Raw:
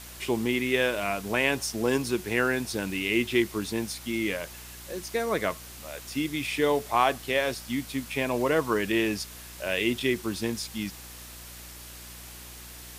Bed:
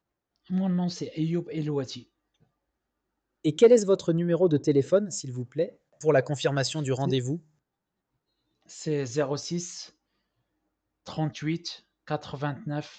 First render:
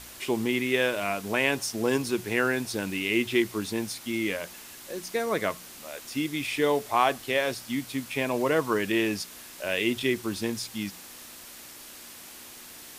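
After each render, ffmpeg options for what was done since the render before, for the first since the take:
-af "bandreject=f=60:t=h:w=4,bandreject=f=120:t=h:w=4,bandreject=f=180:t=h:w=4"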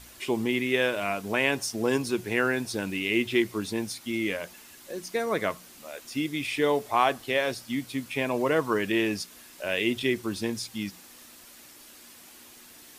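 -af "afftdn=nr=6:nf=-46"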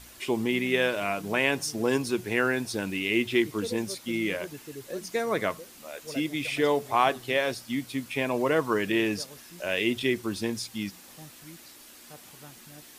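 -filter_complex "[1:a]volume=-19.5dB[a];[0:a][a]amix=inputs=2:normalize=0"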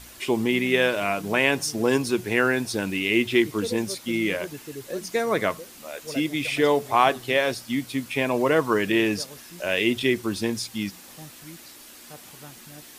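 -af "volume=4dB"

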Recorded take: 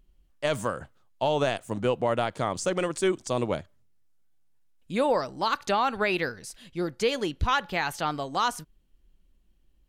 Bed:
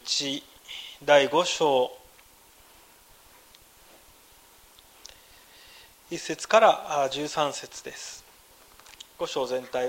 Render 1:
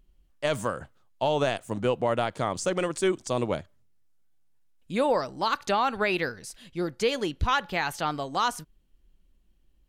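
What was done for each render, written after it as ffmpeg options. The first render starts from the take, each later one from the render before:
-af anull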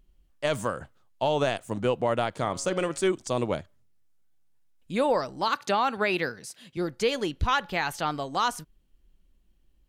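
-filter_complex "[0:a]asettb=1/sr,asplit=3[a][b][c];[a]atrim=end=2.404[d];[b]atrim=start=2.4:end=3.07,asetpts=PTS-STARTPTS,afade=t=in:d=0.004:c=qsin,afade=t=out:st=0.666:d=0.004:c=qsin,bandreject=f=138.2:t=h:w=4,bandreject=f=276.4:t=h:w=4,bandreject=f=414.6:t=h:w=4,bandreject=f=552.8:t=h:w=4,bandreject=f=691:t=h:w=4,bandreject=f=829.2:t=h:w=4,bandreject=f=967.4:t=h:w=4,bandreject=f=1.1056k:t=h:w=4,bandreject=f=1.2438k:t=h:w=4,bandreject=f=1.382k:t=h:w=4,bandreject=f=1.5202k:t=h:w=4,bandreject=f=1.6584k:t=h:w=4,bandreject=f=1.7966k:t=h:w=4,bandreject=f=1.9348k:t=h:w=4,bandreject=f=2.073k:t=h:w=4,bandreject=f=2.2112k:t=h:w=4,bandreject=f=2.3494k:t=h:w=4,bandreject=f=2.4876k:t=h:w=4,bandreject=f=2.6258k:t=h:w=4,bandreject=f=2.764k:t=h:w=4,bandreject=f=2.9022k:t=h:w=4,bandreject=f=3.0404k:t=h:w=4,bandreject=f=3.1786k:t=h:w=4,bandreject=f=3.3168k:t=h:w=4,bandreject=f=3.455k:t=h:w=4,bandreject=f=3.5932k:t=h:w=4,bandreject=f=3.7314k:t=h:w=4,bandreject=f=3.8696k:t=h:w=4,bandreject=f=4.0078k:t=h:w=4,bandreject=f=4.146k:t=h:w=4,bandreject=f=4.2842k:t=h:w=4,bandreject=f=4.4224k:t=h:w=4,bandreject=f=4.5606k:t=h:w=4,bandreject=f=4.6988k:t=h:w=4,bandreject=f=4.837k:t=h:w=4[e];[c]atrim=start=3.066[f];[d][e]acrossfade=d=0.004:c1=hsin:c2=qsin[g];[g][f]acrossfade=d=0.004:c1=qsin:c2=hsin,asettb=1/sr,asplit=3[h][i][j];[h]atrim=end=5.484[k];[i]atrim=start=5.48:end=6.77,asetpts=PTS-STARTPTS,afade=t=in:d=0.004:c=qsin,afade=t=out:st=1.286:d=0.004:c=qsin,highpass=f=110:w=0.5412,highpass=f=110:w=1.3066[l];[j]atrim=start=6.766[m];[k][l]acrossfade=d=0.004:c1=hsin:c2=qsin[n];[n][m]acrossfade=d=0.004:c1=qsin:c2=hsin"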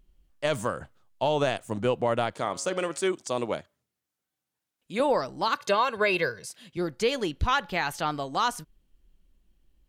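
-filter_complex "[0:a]asettb=1/sr,asplit=3[a][b][c];[a]atrim=end=2.344[d];[b]atrim=start=2.34:end=5,asetpts=PTS-STARTPTS,afade=t=in:d=0.004:c=qsin,afade=t=out:st=2.656:d=0.004:c=qsin,highpass=f=290:p=1[e];[c]atrim=start=4.996[f];[d][e]acrossfade=d=0.004:c1=hsin:c2=qsin[g];[g][f]acrossfade=d=0.004:c1=qsin:c2=hsin,asettb=1/sr,asplit=3[h][i][j];[h]atrim=end=5.584[k];[i]atrim=start=5.58:end=6.49,asetpts=PTS-STARTPTS,afade=t=in:d=0.004:c=qsin,afade=t=out:st=0.906:d=0.004:c=qsin,aecho=1:1:1.9:0.65,atrim=end_sample=40131[l];[j]atrim=start=6.486[m];[k][l]acrossfade=d=0.004:c1=hsin:c2=qsin[n];[n][m]acrossfade=d=0.004:c1=qsin:c2=hsin"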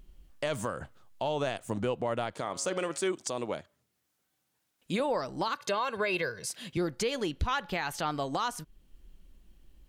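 -filter_complex "[0:a]asplit=2[a][b];[b]acompressor=threshold=-33dB:ratio=6,volume=3dB[c];[a][c]amix=inputs=2:normalize=0,alimiter=limit=-21dB:level=0:latency=1:release=481"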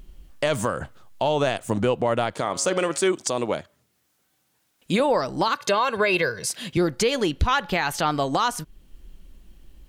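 -af "volume=9dB"

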